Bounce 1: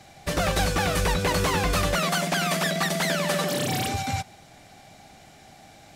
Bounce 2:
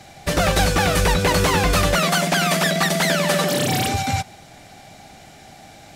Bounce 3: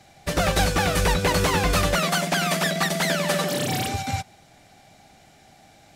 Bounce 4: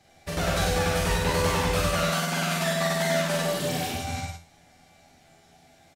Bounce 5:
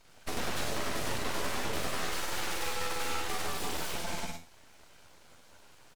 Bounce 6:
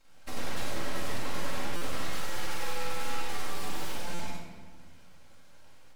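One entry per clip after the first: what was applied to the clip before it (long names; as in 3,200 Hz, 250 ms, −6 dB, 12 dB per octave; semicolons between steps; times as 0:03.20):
notch filter 1,100 Hz, Q 24; level +6 dB
expander for the loud parts 1.5 to 1, over −28 dBFS; level −2.5 dB
tuned comb filter 83 Hz, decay 0.38 s, harmonics all, mix 80%; on a send: loudspeakers that aren't time-aligned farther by 15 metres −2 dB, 33 metres −3 dB, 53 metres −5 dB
downward compressor 3 to 1, threshold −31 dBFS, peak gain reduction 8.5 dB; full-wave rectification; level +1 dB
rectangular room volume 1,600 cubic metres, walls mixed, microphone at 2.2 metres; buffer that repeats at 0:01.76/0:04.14, samples 256, times 8; level −6 dB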